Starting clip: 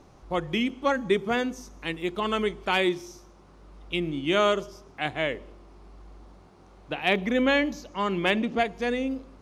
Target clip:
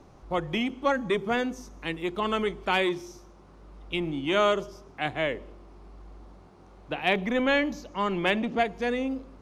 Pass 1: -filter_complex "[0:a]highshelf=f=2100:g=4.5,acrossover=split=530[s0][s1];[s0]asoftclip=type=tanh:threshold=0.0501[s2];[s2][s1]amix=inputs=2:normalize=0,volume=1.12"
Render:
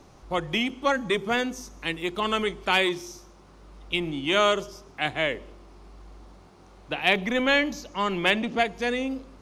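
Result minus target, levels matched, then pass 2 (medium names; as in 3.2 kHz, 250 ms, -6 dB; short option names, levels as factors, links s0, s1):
4 kHz band +3.5 dB
-filter_complex "[0:a]highshelf=f=2100:g=-4,acrossover=split=530[s0][s1];[s0]asoftclip=type=tanh:threshold=0.0501[s2];[s2][s1]amix=inputs=2:normalize=0,volume=1.12"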